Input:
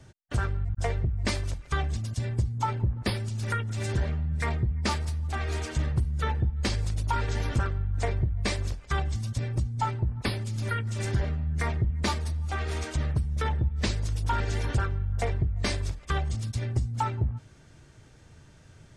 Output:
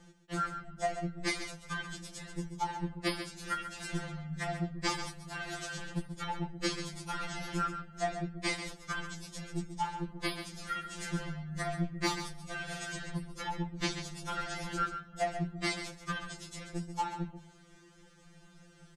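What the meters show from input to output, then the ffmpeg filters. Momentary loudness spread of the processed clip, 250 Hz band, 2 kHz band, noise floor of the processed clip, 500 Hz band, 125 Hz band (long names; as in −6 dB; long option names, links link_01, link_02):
7 LU, −2.5 dB, −2.0 dB, −59 dBFS, −4.0 dB, −14.5 dB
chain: -filter_complex "[0:a]asplit=2[link_01][link_02];[link_02]aecho=0:1:135:0.335[link_03];[link_01][link_03]amix=inputs=2:normalize=0,afftfilt=real='re*2.83*eq(mod(b,8),0)':imag='im*2.83*eq(mod(b,8),0)':win_size=2048:overlap=0.75"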